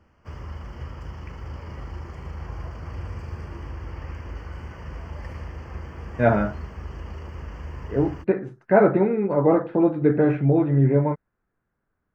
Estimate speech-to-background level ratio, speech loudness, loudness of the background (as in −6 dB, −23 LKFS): 16.0 dB, −21.0 LKFS, −37.0 LKFS